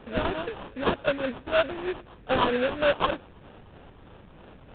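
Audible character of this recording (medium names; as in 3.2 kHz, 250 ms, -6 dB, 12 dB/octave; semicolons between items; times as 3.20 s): phasing stages 6, 3.2 Hz, lowest notch 610–2400 Hz; aliases and images of a low sample rate 2.1 kHz, jitter 20%; µ-law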